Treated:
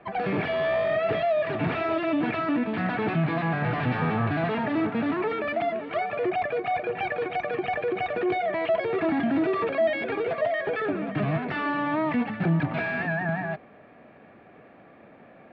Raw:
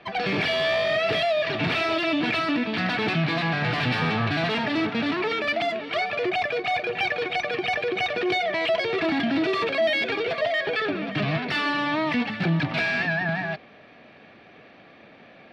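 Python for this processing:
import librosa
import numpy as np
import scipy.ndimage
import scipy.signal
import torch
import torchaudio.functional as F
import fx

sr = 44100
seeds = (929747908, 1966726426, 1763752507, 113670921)

y = scipy.signal.sosfilt(scipy.signal.butter(2, 1500.0, 'lowpass', fs=sr, output='sos'), x)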